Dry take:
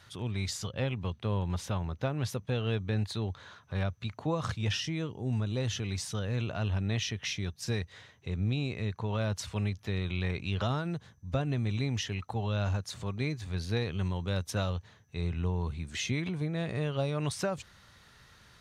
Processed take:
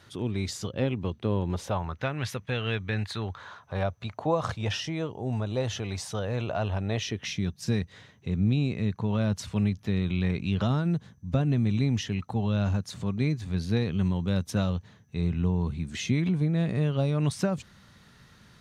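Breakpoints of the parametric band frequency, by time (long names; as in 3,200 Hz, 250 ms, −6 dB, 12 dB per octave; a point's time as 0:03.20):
parametric band +10 dB 1.5 octaves
0:01.49 310 Hz
0:02.04 2,000 Hz
0:02.99 2,000 Hz
0:03.76 690 Hz
0:06.88 690 Hz
0:07.32 200 Hz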